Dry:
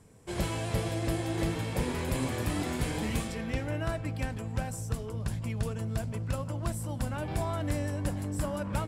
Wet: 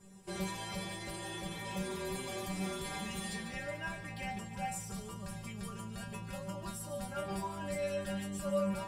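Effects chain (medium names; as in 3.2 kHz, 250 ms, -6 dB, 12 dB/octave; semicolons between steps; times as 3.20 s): 7.82–8.23 s: high-order bell 2.3 kHz +8 dB; peak limiter -29.5 dBFS, peak gain reduction 10.5 dB; inharmonic resonator 190 Hz, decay 0.41 s, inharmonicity 0.002; on a send: feedback echo behind a high-pass 146 ms, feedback 53%, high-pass 2.1 kHz, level -10.5 dB; on the sum: trim +15 dB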